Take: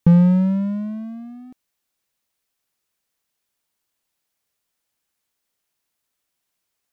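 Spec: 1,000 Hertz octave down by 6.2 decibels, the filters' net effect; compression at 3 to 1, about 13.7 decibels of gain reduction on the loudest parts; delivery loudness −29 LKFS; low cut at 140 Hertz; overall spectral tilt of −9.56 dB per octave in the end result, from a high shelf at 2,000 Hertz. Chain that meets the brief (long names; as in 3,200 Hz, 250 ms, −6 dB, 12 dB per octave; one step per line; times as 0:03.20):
high-pass filter 140 Hz
parametric band 1,000 Hz −5.5 dB
high-shelf EQ 2,000 Hz −8 dB
downward compressor 3 to 1, threshold −31 dBFS
level +2 dB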